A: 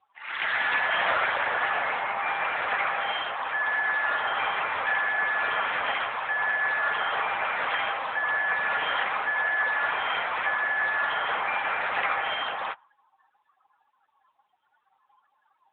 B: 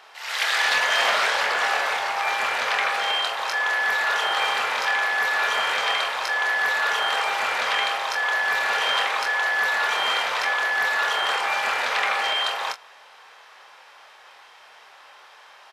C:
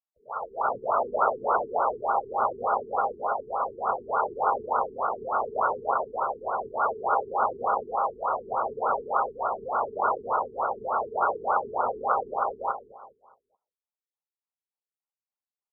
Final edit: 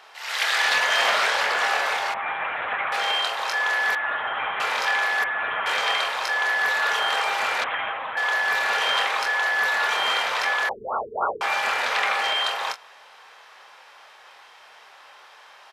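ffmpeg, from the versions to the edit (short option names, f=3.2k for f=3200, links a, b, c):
-filter_complex "[0:a]asplit=4[a][b][c][d];[1:a]asplit=6[e][f][g][h][i][j];[e]atrim=end=2.142[k];[a]atrim=start=2.138:end=2.922[l];[f]atrim=start=2.918:end=3.952[m];[b]atrim=start=3.948:end=4.602[n];[g]atrim=start=4.598:end=5.242[o];[c]atrim=start=5.238:end=5.662[p];[h]atrim=start=5.658:end=7.642[q];[d]atrim=start=7.638:end=8.172[r];[i]atrim=start=8.168:end=10.692[s];[2:a]atrim=start=10.688:end=11.412[t];[j]atrim=start=11.408[u];[k][l]acrossfade=d=0.004:c1=hsin:c2=hsin[v];[v][m]acrossfade=d=0.004:c1=hsin:c2=hsin[w];[w][n]acrossfade=d=0.004:c1=hsin:c2=hsin[x];[x][o]acrossfade=d=0.004:c1=hsin:c2=hsin[y];[y][p]acrossfade=d=0.004:c1=hsin:c2=hsin[z];[z][q]acrossfade=d=0.004:c1=hsin:c2=hsin[aa];[aa][r]acrossfade=d=0.004:c1=hsin:c2=hsin[ab];[ab][s]acrossfade=d=0.004:c1=hsin:c2=hsin[ac];[ac][t]acrossfade=d=0.004:c1=hsin:c2=hsin[ad];[ad][u]acrossfade=d=0.004:c1=hsin:c2=hsin"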